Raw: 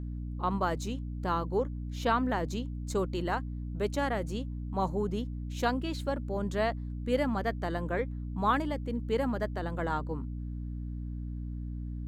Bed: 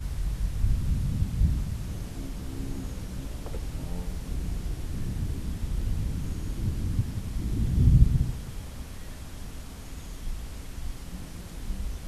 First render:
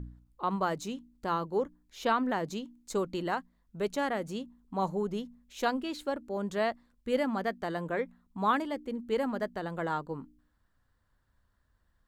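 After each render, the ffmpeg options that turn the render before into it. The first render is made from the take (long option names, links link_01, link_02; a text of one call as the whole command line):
ffmpeg -i in.wav -af "bandreject=frequency=60:width_type=h:width=4,bandreject=frequency=120:width_type=h:width=4,bandreject=frequency=180:width_type=h:width=4,bandreject=frequency=240:width_type=h:width=4,bandreject=frequency=300:width_type=h:width=4" out.wav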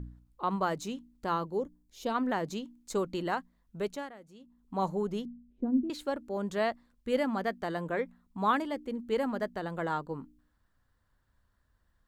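ffmpeg -i in.wav -filter_complex "[0:a]asplit=3[link_01][link_02][link_03];[link_01]afade=type=out:start_time=1.51:duration=0.02[link_04];[link_02]equalizer=frequency=1600:width_type=o:width=2:gain=-12.5,afade=type=in:start_time=1.51:duration=0.02,afade=type=out:start_time=2.14:duration=0.02[link_05];[link_03]afade=type=in:start_time=2.14:duration=0.02[link_06];[link_04][link_05][link_06]amix=inputs=3:normalize=0,asettb=1/sr,asplit=3[link_07][link_08][link_09];[link_07]atrim=end=5.254[link_10];[link_08]atrim=start=5.25:end=5.9,asetpts=PTS-STARTPTS,afade=type=in:duration=0.004:curve=qsin,afade=type=out:start_time=0.646:duration=0.004:curve=qsin,lowpass=frequency=250:width_type=q:width=2.6[link_11];[link_09]atrim=start=5.896[link_12];[link_10][link_11]acrossfade=duration=0.004:curve1=hsin:curve2=qsin[link_13];[link_13][link_12]acrossfade=duration=0.004:curve1=qsin:curve2=hsin,asplit=3[link_14][link_15][link_16];[link_14]atrim=end=4.12,asetpts=PTS-STARTPTS,afade=type=out:start_time=3.77:duration=0.35:silence=0.133352[link_17];[link_15]atrim=start=4.12:end=4.39,asetpts=PTS-STARTPTS,volume=-17.5dB[link_18];[link_16]atrim=start=4.39,asetpts=PTS-STARTPTS,afade=type=in:duration=0.35:silence=0.133352[link_19];[link_17][link_18][link_19]concat=n=3:v=0:a=1" out.wav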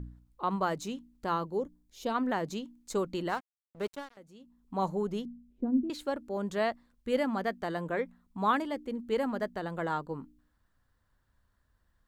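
ffmpeg -i in.wav -filter_complex "[0:a]asettb=1/sr,asplit=3[link_01][link_02][link_03];[link_01]atrim=end=3.294[link_04];[link_02]atrim=start=3.29:end=4.17,asetpts=PTS-STARTPTS,afade=type=in:duration=0.004:curve=qsin,afade=type=out:start_time=0.876:duration=0.004:curve=qsin,aeval=exprs='sgn(val(0))*max(abs(val(0))-0.00596,0)':channel_layout=same[link_05];[link_03]atrim=start=4.166[link_06];[link_04][link_05]acrossfade=duration=0.004:curve1=hsin:curve2=qsin[link_07];[link_07][link_06]acrossfade=duration=0.004:curve1=qsin:curve2=hsin" out.wav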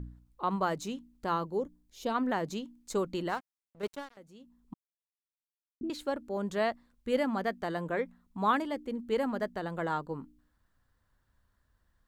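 ffmpeg -i in.wav -filter_complex "[0:a]asplit=4[link_01][link_02][link_03][link_04];[link_01]atrim=end=3.83,asetpts=PTS-STARTPTS,afade=type=out:start_time=3.2:duration=0.63:silence=0.501187[link_05];[link_02]atrim=start=3.83:end=4.74,asetpts=PTS-STARTPTS,afade=type=in:duration=0.004:curve=hsin:silence=0.501187,afade=type=out:start_time=0.906:duration=0.004:curve=hsin[link_06];[link_03]atrim=start=4.74:end=5.81,asetpts=PTS-STARTPTS,volume=0[link_07];[link_04]atrim=start=5.81,asetpts=PTS-STARTPTS,afade=type=in:duration=0.004:curve=hsin[link_08];[link_05][link_06][link_07][link_08]concat=n=4:v=0:a=1" out.wav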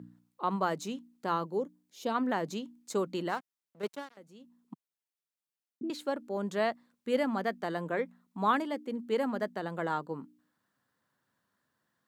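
ffmpeg -i in.wav -af "highpass=frequency=150:width=0.5412,highpass=frequency=150:width=1.3066" out.wav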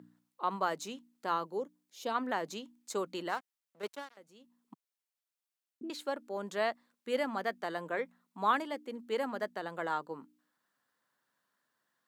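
ffmpeg -i in.wav -af "highpass=frequency=530:poles=1" out.wav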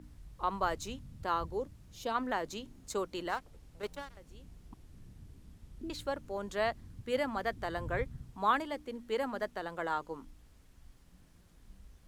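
ffmpeg -i in.wav -i bed.wav -filter_complex "[1:a]volume=-22dB[link_01];[0:a][link_01]amix=inputs=2:normalize=0" out.wav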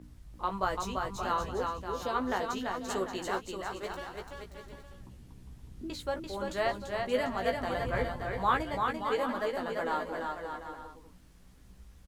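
ffmpeg -i in.wav -filter_complex "[0:a]asplit=2[link_01][link_02];[link_02]adelay=16,volume=-5dB[link_03];[link_01][link_03]amix=inputs=2:normalize=0,aecho=1:1:340|578|744.6|861.2|942.9:0.631|0.398|0.251|0.158|0.1" out.wav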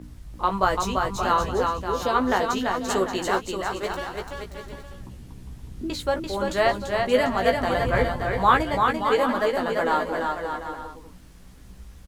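ffmpeg -i in.wav -af "volume=9.5dB" out.wav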